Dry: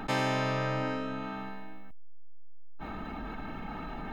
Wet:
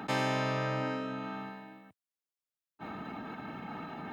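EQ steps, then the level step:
high-pass filter 99 Hz 24 dB per octave
−1.5 dB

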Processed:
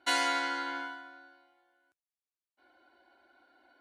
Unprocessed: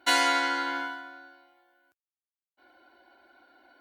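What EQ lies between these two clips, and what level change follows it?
Butterworth low-pass 12,000 Hz 48 dB per octave
−5.5 dB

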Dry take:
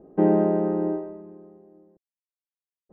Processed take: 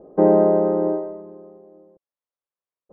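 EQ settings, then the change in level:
high-frequency loss of the air 300 metres
parametric band 540 Hz +11 dB 0.73 octaves
parametric band 1,100 Hz +8 dB 0.7 octaves
0.0 dB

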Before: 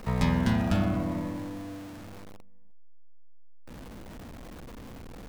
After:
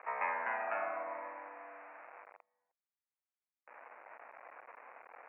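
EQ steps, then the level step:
high-pass filter 680 Hz 24 dB per octave
Butterworth low-pass 2,500 Hz 96 dB per octave
high-frequency loss of the air 140 metres
+1.0 dB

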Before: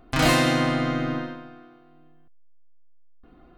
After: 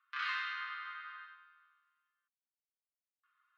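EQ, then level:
Chebyshev high-pass with heavy ripple 1,100 Hz, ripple 3 dB
low-pass filter 3,100 Hz 6 dB per octave
high-frequency loss of the air 290 metres
−6.0 dB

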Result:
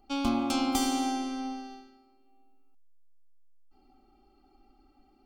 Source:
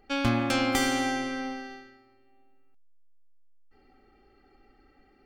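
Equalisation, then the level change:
phaser with its sweep stopped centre 480 Hz, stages 6
0.0 dB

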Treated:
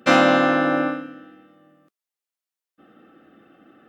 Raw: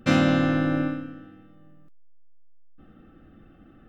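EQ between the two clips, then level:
high-pass filter 330 Hz 12 dB per octave
dynamic equaliser 900 Hz, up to +7 dB, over −41 dBFS, Q 0.82
+5.5 dB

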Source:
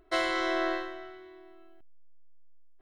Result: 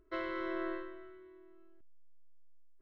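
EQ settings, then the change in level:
Butterworth band-reject 760 Hz, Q 2.6
head-to-tape spacing loss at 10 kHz 42 dB
−4.0 dB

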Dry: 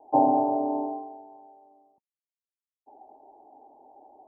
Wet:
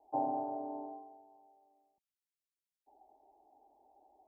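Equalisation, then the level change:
octave-band graphic EQ 125/250/500/1,000 Hz −9/−11/−9/−10 dB
−2.0 dB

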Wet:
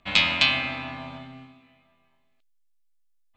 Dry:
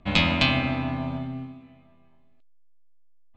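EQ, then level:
tilt shelving filter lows −8.5 dB, about 780 Hz
−4.0 dB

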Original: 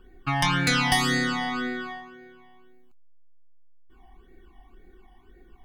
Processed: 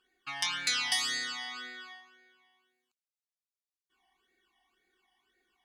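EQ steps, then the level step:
resonant band-pass 5,700 Hz, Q 0.81
−1.0 dB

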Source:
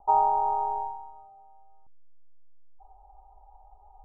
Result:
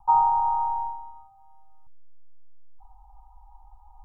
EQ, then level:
elliptic band-stop filter 160–950 Hz, stop band 60 dB
+6.0 dB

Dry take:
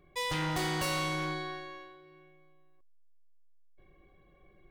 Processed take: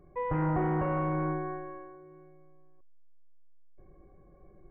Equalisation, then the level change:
Gaussian smoothing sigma 6.5 samples
+6.0 dB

